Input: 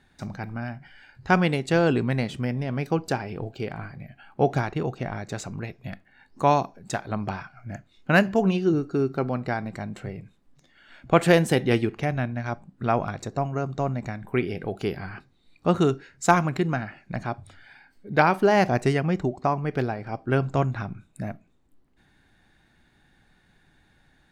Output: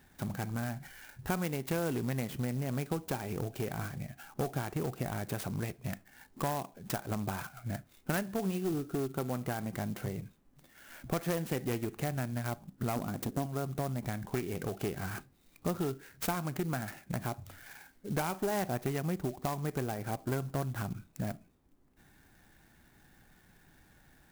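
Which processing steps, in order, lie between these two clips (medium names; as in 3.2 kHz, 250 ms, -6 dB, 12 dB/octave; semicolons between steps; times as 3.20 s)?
12.96–13.46 s: graphic EQ 250/4000/8000 Hz +11/-12/+11 dB; compression 4:1, threshold -31 dBFS, peak gain reduction 16 dB; one-sided clip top -30.5 dBFS; sampling jitter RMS 0.057 ms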